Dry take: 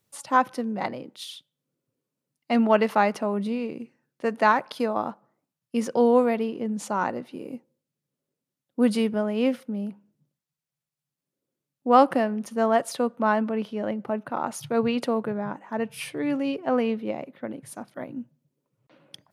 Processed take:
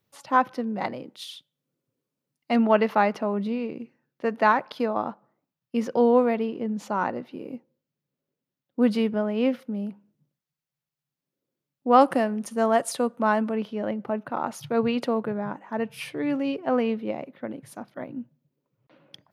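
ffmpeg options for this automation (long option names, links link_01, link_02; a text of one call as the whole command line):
ffmpeg -i in.wav -af "asetnsamples=nb_out_samples=441:pad=0,asendcmd='0.75 equalizer g -3.5;2.56 equalizer g -14;9.59 equalizer g -6.5;12.01 equalizer g 5;13.55 equalizer g -7;17.77 equalizer g -13',equalizer=frequency=9000:width_type=o:width=0.95:gain=-13.5" out.wav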